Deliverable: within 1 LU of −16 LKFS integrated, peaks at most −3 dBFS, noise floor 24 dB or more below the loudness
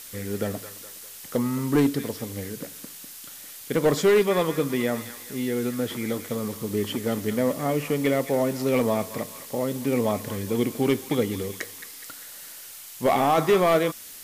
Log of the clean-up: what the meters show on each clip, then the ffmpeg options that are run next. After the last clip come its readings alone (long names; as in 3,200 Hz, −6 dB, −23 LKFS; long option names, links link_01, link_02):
background noise floor −42 dBFS; target noise floor −50 dBFS; integrated loudness −25.5 LKFS; sample peak −12.5 dBFS; target loudness −16.0 LKFS
→ -af "afftdn=noise_reduction=8:noise_floor=-42"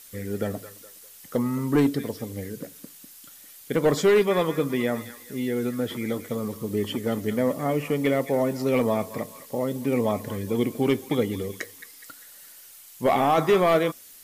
background noise floor −48 dBFS; target noise floor −50 dBFS
→ -af "afftdn=noise_reduction=6:noise_floor=-48"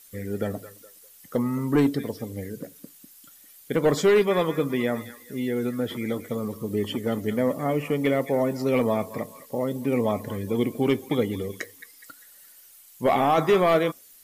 background noise floor −52 dBFS; integrated loudness −25.5 LKFS; sample peak −13.0 dBFS; target loudness −16.0 LKFS
→ -af "volume=9.5dB"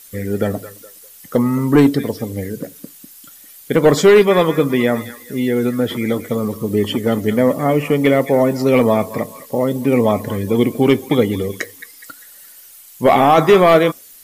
integrated loudness −16.0 LKFS; sample peak −3.5 dBFS; background noise floor −42 dBFS